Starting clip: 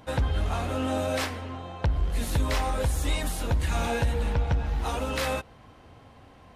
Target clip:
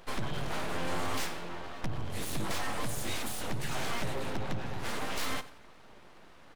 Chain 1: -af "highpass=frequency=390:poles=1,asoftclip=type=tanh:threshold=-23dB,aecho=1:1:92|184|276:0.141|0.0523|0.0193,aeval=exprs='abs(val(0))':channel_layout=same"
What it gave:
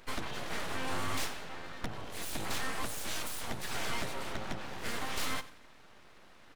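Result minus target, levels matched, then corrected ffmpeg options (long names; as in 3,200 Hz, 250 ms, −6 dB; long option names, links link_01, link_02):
125 Hz band −5.0 dB
-af "highpass=frequency=100:poles=1,asoftclip=type=tanh:threshold=-23dB,aecho=1:1:92|184|276:0.141|0.0523|0.0193,aeval=exprs='abs(val(0))':channel_layout=same"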